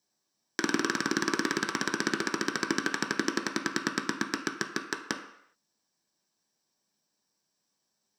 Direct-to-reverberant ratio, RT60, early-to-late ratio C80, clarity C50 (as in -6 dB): 1.5 dB, not exponential, 11.0 dB, 9.0 dB